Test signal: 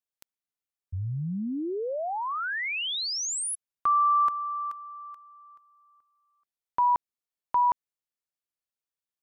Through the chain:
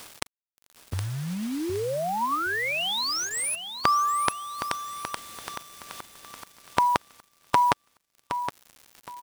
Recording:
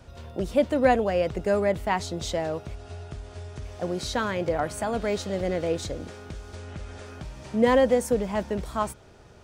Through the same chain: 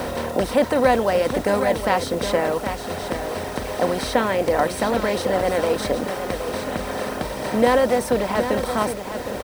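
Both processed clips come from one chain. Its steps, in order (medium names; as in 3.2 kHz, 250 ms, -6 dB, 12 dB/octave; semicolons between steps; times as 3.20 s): spectral levelling over time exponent 0.4; reverb removal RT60 1.6 s; band-stop 6.9 kHz, Q 5.4; bit crusher 7-bit; on a send: feedback delay 767 ms, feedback 25%, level -9 dB; on the sum: trim +1 dB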